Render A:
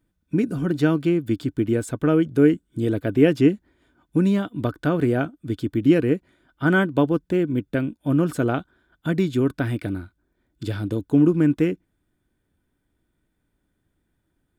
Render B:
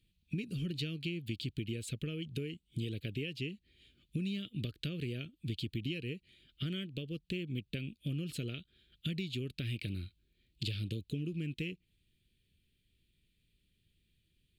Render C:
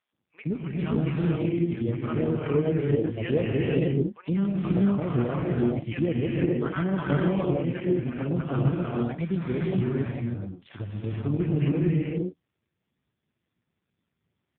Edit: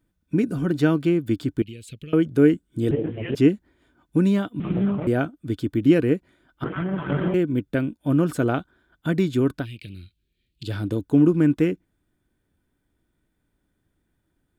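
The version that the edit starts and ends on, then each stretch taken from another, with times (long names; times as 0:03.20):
A
0:01.62–0:02.13: punch in from B
0:02.91–0:03.35: punch in from C
0:04.60–0:05.07: punch in from C
0:06.64–0:07.34: punch in from C
0:09.62–0:10.68: punch in from B, crossfade 0.10 s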